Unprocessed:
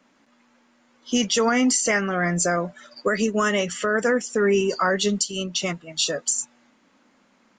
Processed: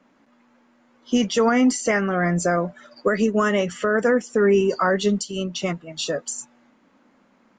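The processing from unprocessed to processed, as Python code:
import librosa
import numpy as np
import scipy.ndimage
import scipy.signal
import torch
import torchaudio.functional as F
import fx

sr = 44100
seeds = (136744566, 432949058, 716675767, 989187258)

y = fx.high_shelf(x, sr, hz=2400.0, db=-11.0)
y = y * 10.0 ** (3.0 / 20.0)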